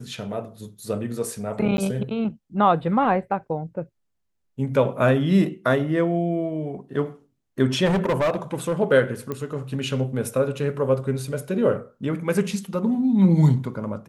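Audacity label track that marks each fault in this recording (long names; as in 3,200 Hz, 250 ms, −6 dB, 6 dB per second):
1.770000	1.780000	drop-out
7.850000	8.740000	clipping −17.5 dBFS
9.320000	9.320000	click −16 dBFS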